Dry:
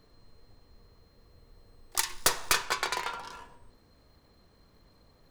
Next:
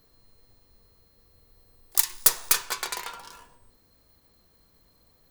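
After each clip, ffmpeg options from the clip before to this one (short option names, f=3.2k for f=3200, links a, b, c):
-af "aemphasis=mode=production:type=50fm,volume=-3.5dB"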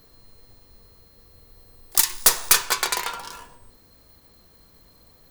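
-af "apsyclip=15dB,volume=-7dB"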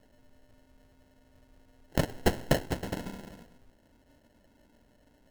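-af "acrusher=samples=37:mix=1:aa=0.000001,volume=-9dB"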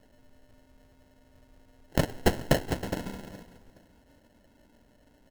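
-af "aecho=1:1:418|836|1254:0.0944|0.0321|0.0109,volume=2dB"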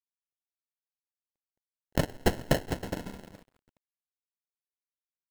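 -af "aeval=exprs='sgn(val(0))*max(abs(val(0))-0.00398,0)':c=same,volume=-1.5dB"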